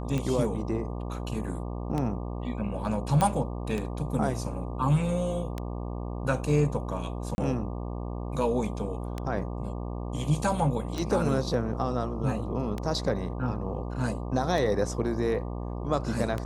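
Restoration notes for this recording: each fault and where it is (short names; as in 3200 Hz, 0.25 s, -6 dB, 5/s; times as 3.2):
buzz 60 Hz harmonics 20 -34 dBFS
tick 33 1/3 rpm -18 dBFS
3.21 pop -12 dBFS
7.35–7.38 gap 31 ms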